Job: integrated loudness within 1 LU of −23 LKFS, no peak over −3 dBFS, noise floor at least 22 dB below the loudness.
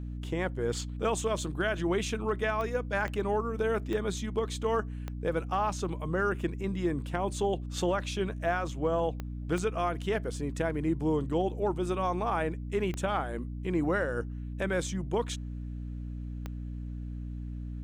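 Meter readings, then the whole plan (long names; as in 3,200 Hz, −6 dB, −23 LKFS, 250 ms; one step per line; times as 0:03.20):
number of clicks 8; mains hum 60 Hz; hum harmonics up to 300 Hz; level of the hum −35 dBFS; integrated loudness −32.0 LKFS; sample peak −17.5 dBFS; target loudness −23.0 LKFS
→ click removal
hum removal 60 Hz, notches 5
level +9 dB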